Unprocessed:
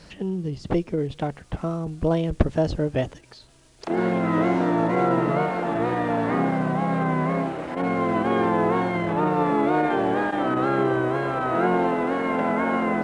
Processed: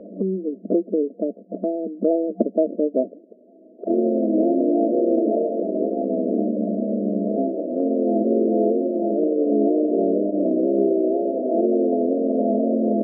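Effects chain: 5.63–7.38 s: ring modulator 37 Hz; FFT band-pass 190–690 Hz; three bands compressed up and down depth 40%; trim +4.5 dB

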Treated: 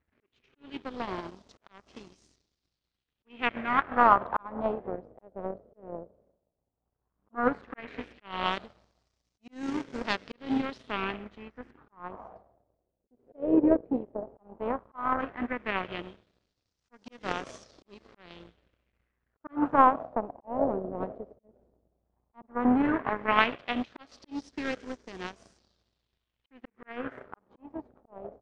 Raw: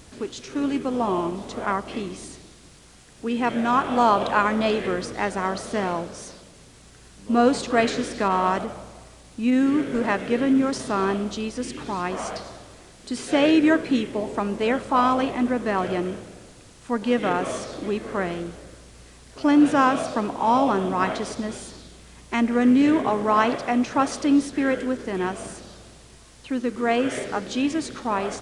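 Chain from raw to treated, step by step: peaking EQ 71 Hz +8 dB 0.89 oct; slow attack 215 ms; power-law waveshaper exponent 2; LFO low-pass sine 0.13 Hz 530–5900 Hz

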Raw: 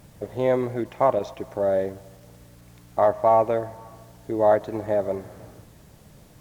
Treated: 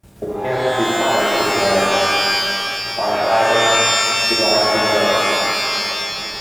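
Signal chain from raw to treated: comb of notches 250 Hz; harmonic-percussive split percussive +9 dB; repeats whose band climbs or falls 749 ms, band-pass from 190 Hz, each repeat 1.4 oct, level -6.5 dB; level held to a coarse grid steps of 23 dB; pitch-shifted reverb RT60 2.5 s, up +12 st, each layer -2 dB, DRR -6.5 dB; trim +1 dB

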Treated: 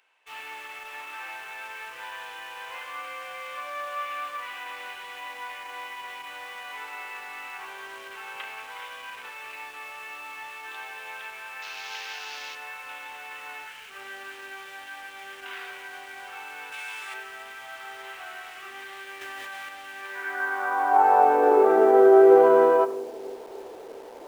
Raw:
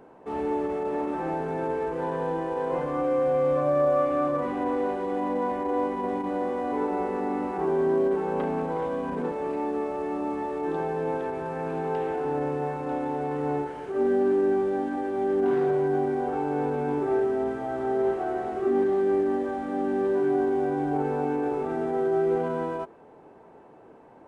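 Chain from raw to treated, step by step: 11.62–12.55 s: CVSD coder 32 kbps; 16.72–17.14 s: tilt EQ +3.5 dB/octave; on a send: two-band feedback delay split 570 Hz, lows 340 ms, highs 92 ms, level -16 dB; on the sum: dynamic bell 1.2 kHz, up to +7 dB, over -43 dBFS, Q 0.95; high-pass sweep 2.7 kHz -> 440 Hz, 19.95–21.60 s; in parallel at -4 dB: bit crusher 8-bit; 19.21–19.69 s: on the sum: level flattener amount 100%

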